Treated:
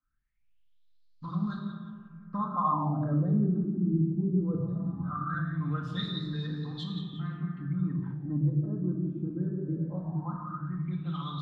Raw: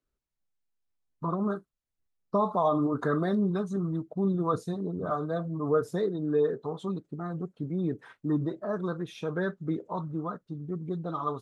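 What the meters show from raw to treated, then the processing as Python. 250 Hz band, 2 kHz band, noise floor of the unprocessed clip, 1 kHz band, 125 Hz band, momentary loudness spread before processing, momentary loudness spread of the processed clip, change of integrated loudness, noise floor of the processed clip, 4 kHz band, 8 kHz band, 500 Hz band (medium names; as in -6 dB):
0.0 dB, -3.5 dB, -84 dBFS, -2.0 dB, +5.0 dB, 9 LU, 9 LU, -1.0 dB, -62 dBFS, +8.5 dB, no reading, -12.5 dB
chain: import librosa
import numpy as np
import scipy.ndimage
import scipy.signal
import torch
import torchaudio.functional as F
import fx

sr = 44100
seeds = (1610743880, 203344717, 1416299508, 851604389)

y = fx.spec_box(x, sr, start_s=4.62, length_s=0.76, low_hz=360.0, high_hz=1100.0, gain_db=-11)
y = fx.curve_eq(y, sr, hz=(150.0, 310.0, 450.0, 1400.0, 3700.0), db=(0, -14, -26, -7, 0))
y = fx.echo_split(y, sr, split_hz=390.0, low_ms=112, high_ms=177, feedback_pct=52, wet_db=-12.5)
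y = fx.room_shoebox(y, sr, seeds[0], volume_m3=2400.0, walls='mixed', distance_m=2.1)
y = fx.filter_lfo_lowpass(y, sr, shape='sine', hz=0.19, low_hz=340.0, high_hz=4500.0, q=5.9)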